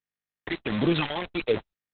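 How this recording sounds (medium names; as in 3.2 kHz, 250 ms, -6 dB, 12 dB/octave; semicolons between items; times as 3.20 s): phasing stages 12, 1.5 Hz, lowest notch 240–1600 Hz; a quantiser's noise floor 6-bit, dither none; Opus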